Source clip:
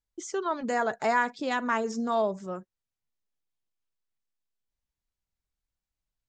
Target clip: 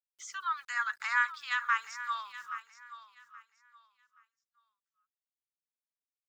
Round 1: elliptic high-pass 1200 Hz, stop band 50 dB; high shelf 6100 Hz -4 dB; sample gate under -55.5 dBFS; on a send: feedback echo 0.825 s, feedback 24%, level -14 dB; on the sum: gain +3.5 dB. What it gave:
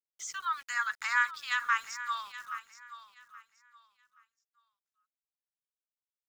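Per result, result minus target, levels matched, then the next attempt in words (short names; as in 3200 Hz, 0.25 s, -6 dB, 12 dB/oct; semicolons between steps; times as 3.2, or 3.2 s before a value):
sample gate: distortion +11 dB; 8000 Hz band +5.0 dB
elliptic high-pass 1200 Hz, stop band 50 dB; high shelf 6100 Hz -4 dB; sample gate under -65.5 dBFS; on a send: feedback echo 0.825 s, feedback 24%, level -14 dB; on the sum: gain +3.5 dB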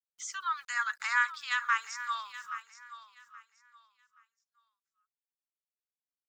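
8000 Hz band +5.0 dB
elliptic high-pass 1200 Hz, stop band 50 dB; high shelf 6100 Hz -14.5 dB; sample gate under -65.5 dBFS; on a send: feedback echo 0.825 s, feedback 24%, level -14 dB; on the sum: gain +3.5 dB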